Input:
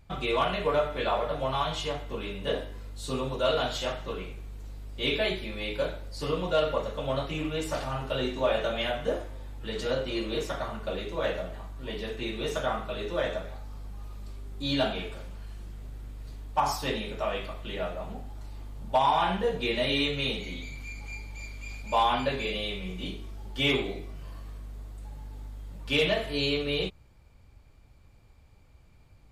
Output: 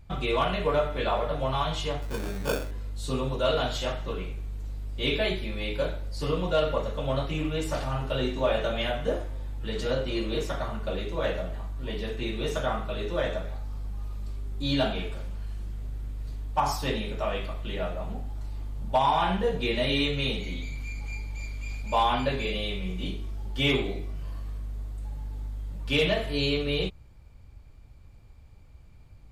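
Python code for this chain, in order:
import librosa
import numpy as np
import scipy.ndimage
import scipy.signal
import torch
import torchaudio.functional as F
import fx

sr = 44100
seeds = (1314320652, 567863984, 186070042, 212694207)

y = fx.low_shelf(x, sr, hz=170.0, db=7.0)
y = fx.sample_hold(y, sr, seeds[0], rate_hz=2000.0, jitter_pct=0, at=(2.01, 2.7), fade=0.02)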